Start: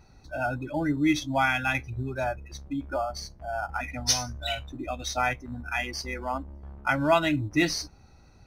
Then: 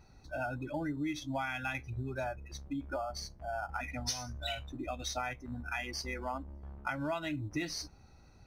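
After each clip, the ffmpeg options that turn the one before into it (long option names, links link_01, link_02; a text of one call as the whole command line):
ffmpeg -i in.wav -af "acompressor=threshold=-29dB:ratio=6,volume=-4dB" out.wav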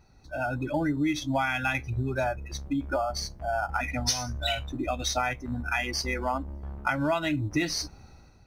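ffmpeg -i in.wav -af "dynaudnorm=framelen=160:gausssize=5:maxgain=9dB" out.wav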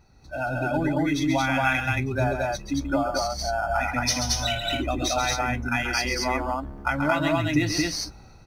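ffmpeg -i in.wav -af "aecho=1:1:134.1|224.5:0.447|0.891,volume=1.5dB" out.wav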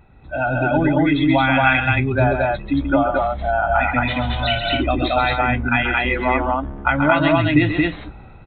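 ffmpeg -i in.wav -af "aresample=8000,aresample=44100,volume=7.5dB" out.wav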